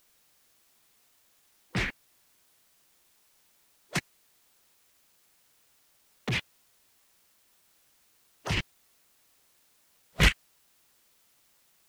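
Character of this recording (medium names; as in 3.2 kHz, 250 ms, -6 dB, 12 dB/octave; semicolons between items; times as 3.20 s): chopped level 1.4 Hz, depth 60%, duty 40%; a quantiser's noise floor 12-bit, dither triangular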